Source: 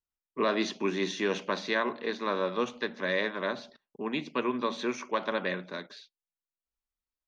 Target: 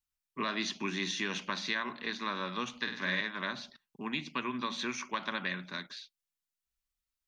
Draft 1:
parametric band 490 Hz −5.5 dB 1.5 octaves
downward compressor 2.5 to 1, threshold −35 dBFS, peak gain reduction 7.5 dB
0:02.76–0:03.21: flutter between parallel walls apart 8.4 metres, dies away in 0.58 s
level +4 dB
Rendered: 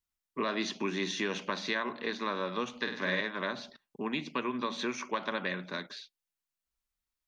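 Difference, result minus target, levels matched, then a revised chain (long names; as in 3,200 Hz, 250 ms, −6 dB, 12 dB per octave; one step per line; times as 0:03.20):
500 Hz band +6.0 dB
parametric band 490 Hz −16.5 dB 1.5 octaves
downward compressor 2.5 to 1, threshold −35 dBFS, peak gain reduction 5.5 dB
0:02.76–0:03.21: flutter between parallel walls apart 8.4 metres, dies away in 0.58 s
level +4 dB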